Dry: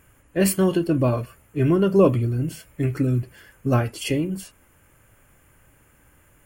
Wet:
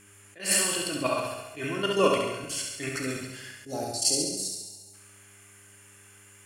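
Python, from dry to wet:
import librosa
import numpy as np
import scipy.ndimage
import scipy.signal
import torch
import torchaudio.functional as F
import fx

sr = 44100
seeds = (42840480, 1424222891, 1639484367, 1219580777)

p1 = fx.weighting(x, sr, curve='ITU-R 468')
p2 = fx.spec_box(p1, sr, start_s=3.52, length_s=1.42, low_hz=890.0, high_hz=3600.0, gain_db=-23)
p3 = fx.high_shelf(p2, sr, hz=12000.0, db=3.5)
p4 = fx.hum_notches(p3, sr, base_hz=60, count=2)
p5 = fx.level_steps(p4, sr, step_db=12)
p6 = fx.dmg_buzz(p5, sr, base_hz=100.0, harmonics=4, level_db=-63.0, tilt_db=-1, odd_only=False)
p7 = p6 + fx.room_flutter(p6, sr, wall_m=11.7, rt60_s=0.89, dry=0)
p8 = fx.rev_schroeder(p7, sr, rt60_s=1.1, comb_ms=27, drr_db=5.5)
p9 = fx.attack_slew(p8, sr, db_per_s=180.0)
y = p9 * librosa.db_to_amplitude(2.5)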